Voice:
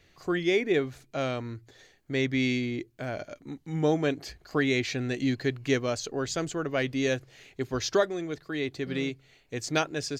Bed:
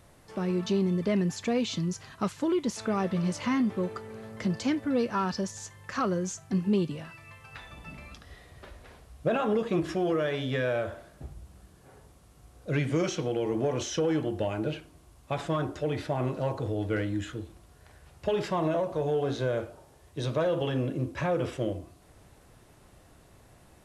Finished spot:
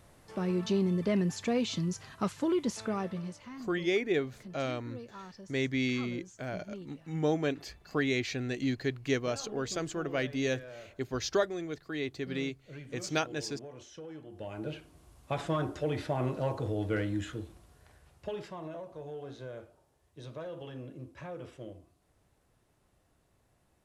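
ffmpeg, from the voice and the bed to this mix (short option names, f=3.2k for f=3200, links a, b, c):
-filter_complex "[0:a]adelay=3400,volume=-4dB[a];[1:a]volume=14.5dB,afade=t=out:st=2.69:d=0.75:silence=0.149624,afade=t=in:st=14.28:d=0.78:silence=0.149624,afade=t=out:st=17.45:d=1.1:silence=0.237137[b];[a][b]amix=inputs=2:normalize=0"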